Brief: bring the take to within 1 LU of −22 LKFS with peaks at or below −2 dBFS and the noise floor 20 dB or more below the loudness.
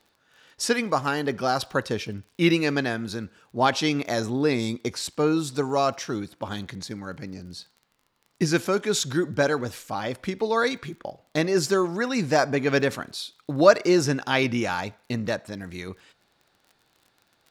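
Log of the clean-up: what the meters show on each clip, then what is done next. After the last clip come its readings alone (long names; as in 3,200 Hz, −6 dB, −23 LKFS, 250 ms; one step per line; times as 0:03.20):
crackle rate 31 per second; integrated loudness −25.0 LKFS; sample peak −2.0 dBFS; target loudness −22.0 LKFS
→ click removal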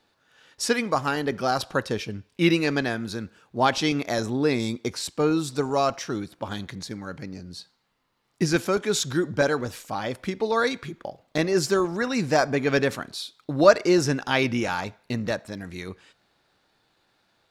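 crackle rate 0.057 per second; integrated loudness −25.0 LKFS; sample peak −2.5 dBFS; target loudness −22.0 LKFS
→ level +3 dB
brickwall limiter −2 dBFS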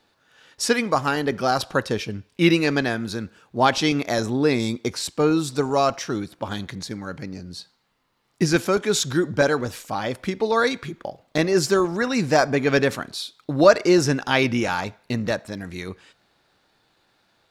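integrated loudness −22.5 LKFS; sample peak −2.0 dBFS; background noise floor −66 dBFS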